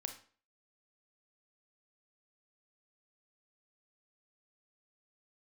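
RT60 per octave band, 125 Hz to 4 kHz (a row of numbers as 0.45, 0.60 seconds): 0.40, 0.45, 0.45, 0.45, 0.40, 0.35 seconds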